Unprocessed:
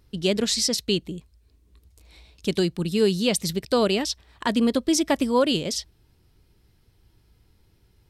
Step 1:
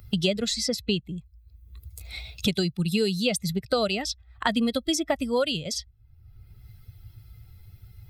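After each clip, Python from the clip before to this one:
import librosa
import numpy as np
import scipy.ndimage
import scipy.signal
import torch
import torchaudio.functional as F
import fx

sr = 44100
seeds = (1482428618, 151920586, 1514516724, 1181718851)

y = fx.bin_expand(x, sr, power=1.5)
y = y + 0.5 * np.pad(y, (int(1.5 * sr / 1000.0), 0))[:len(y)]
y = fx.band_squash(y, sr, depth_pct=100)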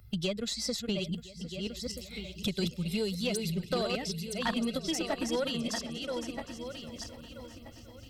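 y = fx.reverse_delay_fb(x, sr, ms=640, feedback_pct=47, wet_db=-4.5)
y = fx.echo_swing(y, sr, ms=1011, ratio=3, feedback_pct=46, wet_db=-17.5)
y = fx.tube_stage(y, sr, drive_db=13.0, bias=0.35)
y = F.gain(torch.from_numpy(y), -6.0).numpy()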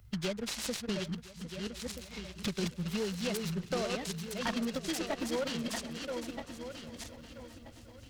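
y = fx.noise_mod_delay(x, sr, seeds[0], noise_hz=1200.0, depth_ms=0.048)
y = F.gain(torch.from_numpy(y), -2.5).numpy()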